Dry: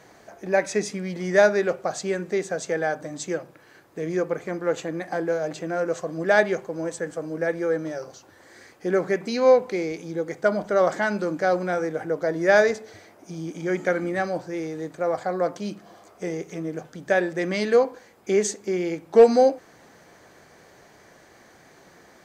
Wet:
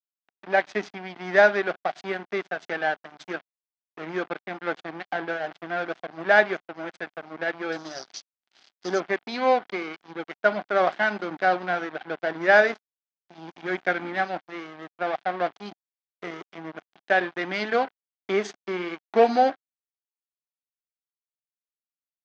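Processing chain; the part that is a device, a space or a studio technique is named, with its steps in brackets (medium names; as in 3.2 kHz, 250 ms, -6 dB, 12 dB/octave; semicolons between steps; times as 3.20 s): 7.72–9.00 s: resonant high shelf 3.4 kHz +14 dB, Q 3; blown loudspeaker (crossover distortion -32.5 dBFS; cabinet simulation 210–4700 Hz, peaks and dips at 490 Hz -8 dB, 740 Hz +6 dB, 1.5 kHz +5 dB, 2.1 kHz +3 dB, 3.3 kHz +4 dB)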